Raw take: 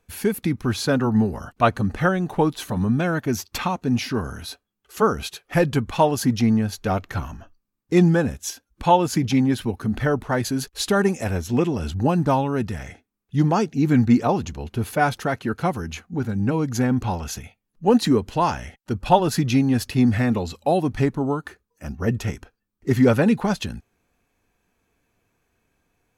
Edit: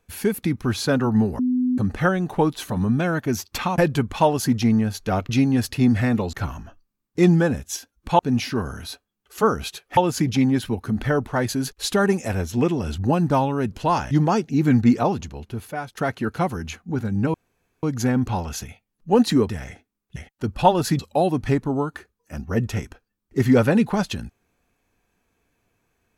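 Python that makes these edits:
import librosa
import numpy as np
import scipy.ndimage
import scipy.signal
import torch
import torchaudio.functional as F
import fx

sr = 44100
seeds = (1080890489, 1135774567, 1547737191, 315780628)

y = fx.edit(x, sr, fx.bleep(start_s=1.39, length_s=0.39, hz=251.0, db=-17.5),
    fx.move(start_s=3.78, length_s=1.78, to_s=8.93),
    fx.swap(start_s=12.68, length_s=0.67, other_s=18.24, other_length_s=0.39),
    fx.fade_out_to(start_s=14.26, length_s=0.95, floor_db=-17.5),
    fx.insert_room_tone(at_s=16.58, length_s=0.49),
    fx.move(start_s=19.46, length_s=1.04, to_s=7.07), tone=tone)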